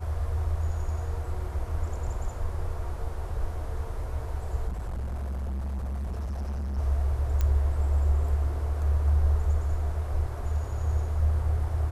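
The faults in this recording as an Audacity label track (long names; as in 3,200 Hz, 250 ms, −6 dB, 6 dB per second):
4.670000	6.790000	clipping −29 dBFS
7.410000	7.410000	click −15 dBFS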